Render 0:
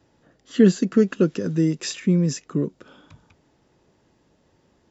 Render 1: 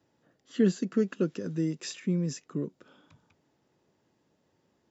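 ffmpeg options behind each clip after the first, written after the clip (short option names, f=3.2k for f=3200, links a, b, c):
-af "highpass=100,volume=-9dB"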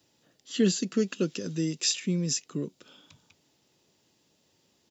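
-af "firequalizer=gain_entry='entry(1600,0);entry(2700,10);entry(4000,13)':delay=0.05:min_phase=1"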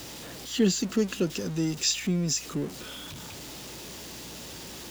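-af "aeval=exprs='val(0)+0.5*0.0158*sgn(val(0))':c=same,aeval=exprs='val(0)+0.002*(sin(2*PI*60*n/s)+sin(2*PI*2*60*n/s)/2+sin(2*PI*3*60*n/s)/3+sin(2*PI*4*60*n/s)/4+sin(2*PI*5*60*n/s)/5)':c=same"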